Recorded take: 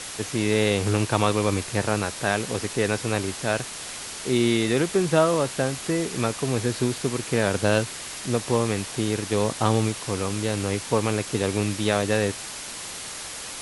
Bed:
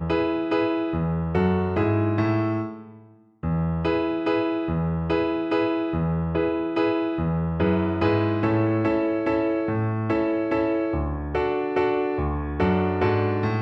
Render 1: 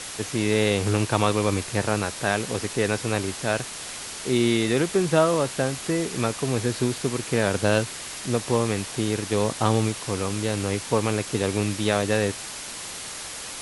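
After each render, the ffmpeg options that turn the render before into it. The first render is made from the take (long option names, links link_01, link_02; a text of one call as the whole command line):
ffmpeg -i in.wav -af anull out.wav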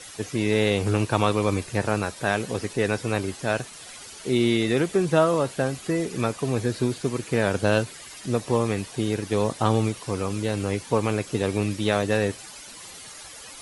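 ffmpeg -i in.wav -af "afftdn=noise_reduction=11:noise_floor=-36" out.wav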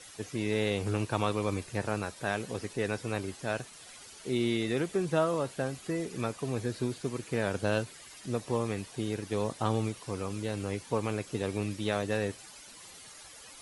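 ffmpeg -i in.wav -af "volume=-8dB" out.wav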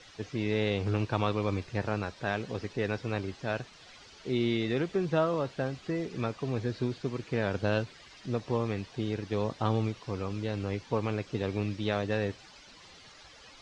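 ffmpeg -i in.wav -af "lowpass=frequency=5400:width=0.5412,lowpass=frequency=5400:width=1.3066,lowshelf=frequency=96:gain=5.5" out.wav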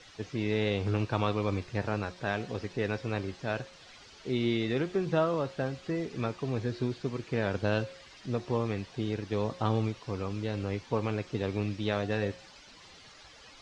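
ffmpeg -i in.wav -af "bandreject=frequency=179.8:width_type=h:width=4,bandreject=frequency=359.6:width_type=h:width=4,bandreject=frequency=539.4:width_type=h:width=4,bandreject=frequency=719.2:width_type=h:width=4,bandreject=frequency=899:width_type=h:width=4,bandreject=frequency=1078.8:width_type=h:width=4,bandreject=frequency=1258.6:width_type=h:width=4,bandreject=frequency=1438.4:width_type=h:width=4,bandreject=frequency=1618.2:width_type=h:width=4,bandreject=frequency=1798:width_type=h:width=4,bandreject=frequency=1977.8:width_type=h:width=4,bandreject=frequency=2157.6:width_type=h:width=4,bandreject=frequency=2337.4:width_type=h:width=4,bandreject=frequency=2517.2:width_type=h:width=4,bandreject=frequency=2697:width_type=h:width=4,bandreject=frequency=2876.8:width_type=h:width=4,bandreject=frequency=3056.6:width_type=h:width=4,bandreject=frequency=3236.4:width_type=h:width=4,bandreject=frequency=3416.2:width_type=h:width=4,bandreject=frequency=3596:width_type=h:width=4,bandreject=frequency=3775.8:width_type=h:width=4,bandreject=frequency=3955.6:width_type=h:width=4,bandreject=frequency=4135.4:width_type=h:width=4,bandreject=frequency=4315.2:width_type=h:width=4,bandreject=frequency=4495:width_type=h:width=4,bandreject=frequency=4674.8:width_type=h:width=4,bandreject=frequency=4854.6:width_type=h:width=4,bandreject=frequency=5034.4:width_type=h:width=4,bandreject=frequency=5214.2:width_type=h:width=4,bandreject=frequency=5394:width_type=h:width=4,bandreject=frequency=5573.8:width_type=h:width=4,bandreject=frequency=5753.6:width_type=h:width=4,bandreject=frequency=5933.4:width_type=h:width=4,bandreject=frequency=6113.2:width_type=h:width=4,bandreject=frequency=6293:width_type=h:width=4,bandreject=frequency=6472.8:width_type=h:width=4" out.wav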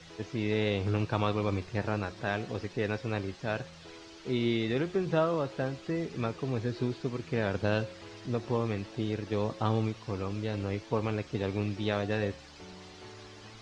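ffmpeg -i in.wav -i bed.wav -filter_complex "[1:a]volume=-28dB[link_01];[0:a][link_01]amix=inputs=2:normalize=0" out.wav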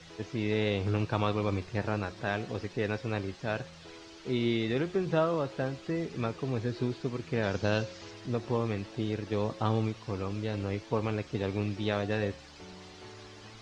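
ffmpeg -i in.wav -filter_complex "[0:a]asettb=1/sr,asplit=3[link_01][link_02][link_03];[link_01]atrim=end=7.434[link_04];[link_02]atrim=start=7.43:end=8.11,asetpts=PTS-STARTPTS,afade=type=in:duration=0.004:curve=qsin,afade=type=out:start_time=0.676:duration=0.004:curve=qsin,lowpass=frequency=6200:width_type=q:width=2.3[link_05];[link_03]atrim=start=8.106[link_06];[link_04][link_05]acrossfade=duration=0.004:curve1=hsin:curve2=qsin[link_07];[link_07][link_06]acrossfade=duration=0.004:curve1=qsin:curve2=hsin" out.wav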